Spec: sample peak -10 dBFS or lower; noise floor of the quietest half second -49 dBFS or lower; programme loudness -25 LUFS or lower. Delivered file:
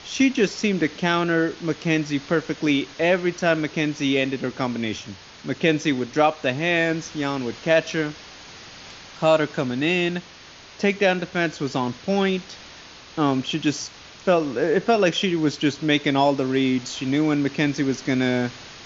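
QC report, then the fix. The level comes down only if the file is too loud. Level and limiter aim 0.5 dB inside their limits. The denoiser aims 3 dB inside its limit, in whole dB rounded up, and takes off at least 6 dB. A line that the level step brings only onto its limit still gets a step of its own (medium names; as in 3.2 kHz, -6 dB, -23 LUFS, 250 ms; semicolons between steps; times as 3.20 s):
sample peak -4.5 dBFS: fail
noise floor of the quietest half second -45 dBFS: fail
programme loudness -22.5 LUFS: fail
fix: noise reduction 6 dB, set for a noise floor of -45 dBFS; trim -3 dB; peak limiter -10.5 dBFS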